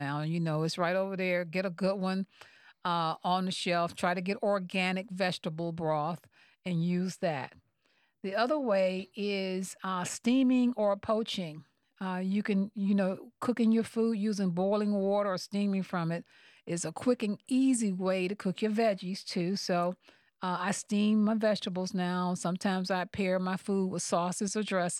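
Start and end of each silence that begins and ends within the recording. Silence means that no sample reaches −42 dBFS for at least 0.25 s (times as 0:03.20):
0:02.42–0:02.85
0:06.24–0:06.66
0:07.53–0:08.24
0:11.59–0:12.01
0:16.20–0:16.67
0:20.09–0:20.42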